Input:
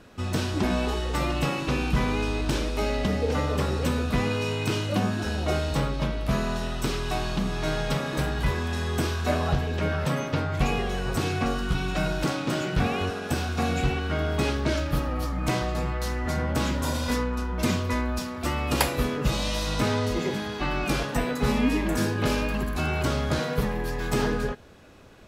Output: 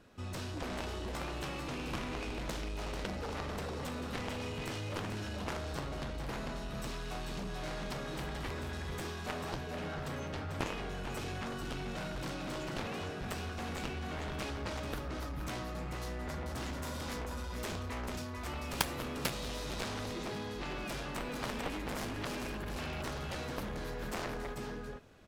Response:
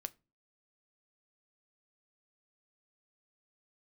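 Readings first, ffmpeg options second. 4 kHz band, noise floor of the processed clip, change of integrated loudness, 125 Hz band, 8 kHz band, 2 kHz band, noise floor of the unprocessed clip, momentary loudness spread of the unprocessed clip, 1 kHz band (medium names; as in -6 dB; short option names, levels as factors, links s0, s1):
-10.0 dB, -41 dBFS, -12.5 dB, -14.0 dB, -9.5 dB, -11.0 dB, -33 dBFS, 4 LU, -11.0 dB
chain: -af "aecho=1:1:443:0.562,aeval=exprs='0.631*(cos(1*acos(clip(val(0)/0.631,-1,1)))-cos(1*PI/2))+0.0631*(cos(3*acos(clip(val(0)/0.631,-1,1)))-cos(3*PI/2))+0.0398*(cos(5*acos(clip(val(0)/0.631,-1,1)))-cos(5*PI/2))+0.141*(cos(7*acos(clip(val(0)/0.631,-1,1)))-cos(7*PI/2))':c=same,volume=0.562"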